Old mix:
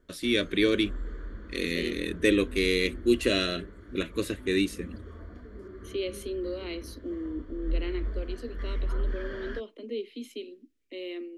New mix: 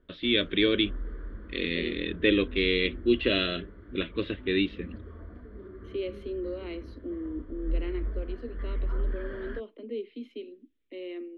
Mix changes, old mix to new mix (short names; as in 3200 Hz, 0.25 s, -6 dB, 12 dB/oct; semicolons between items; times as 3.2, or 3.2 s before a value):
first voice: add synth low-pass 3400 Hz, resonance Q 4.6; master: add air absorption 360 m